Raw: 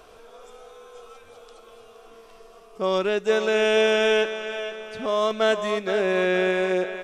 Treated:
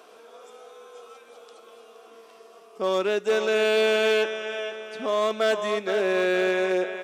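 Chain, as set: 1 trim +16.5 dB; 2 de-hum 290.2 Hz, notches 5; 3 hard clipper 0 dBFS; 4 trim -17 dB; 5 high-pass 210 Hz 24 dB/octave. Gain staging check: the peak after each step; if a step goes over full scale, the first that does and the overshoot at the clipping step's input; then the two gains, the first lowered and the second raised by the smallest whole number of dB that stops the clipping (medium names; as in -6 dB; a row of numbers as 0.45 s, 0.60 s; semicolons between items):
+6.5 dBFS, +6.5 dBFS, 0.0 dBFS, -17.0 dBFS, -10.5 dBFS; step 1, 6.5 dB; step 1 +9.5 dB, step 4 -10 dB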